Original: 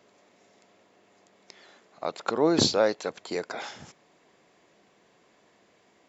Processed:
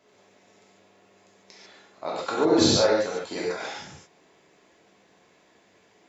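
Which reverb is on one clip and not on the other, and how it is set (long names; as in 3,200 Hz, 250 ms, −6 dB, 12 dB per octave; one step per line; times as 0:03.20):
reverb whose tail is shaped and stops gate 170 ms flat, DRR −6 dB
level −4 dB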